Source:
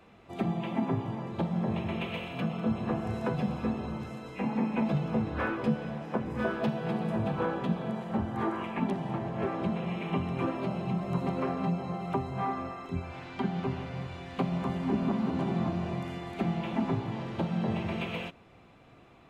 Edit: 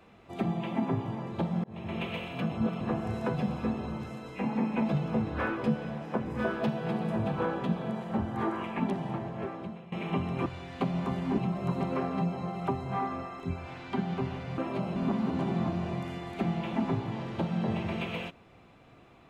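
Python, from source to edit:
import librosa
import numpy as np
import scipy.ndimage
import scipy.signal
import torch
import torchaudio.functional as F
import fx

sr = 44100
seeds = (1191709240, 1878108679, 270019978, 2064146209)

y = fx.edit(x, sr, fx.fade_in_span(start_s=1.64, length_s=0.36),
    fx.reverse_span(start_s=2.52, length_s=0.29),
    fx.fade_out_to(start_s=9.03, length_s=0.89, floor_db=-18.5),
    fx.swap(start_s=10.46, length_s=0.38, other_s=14.04, other_length_s=0.92), tone=tone)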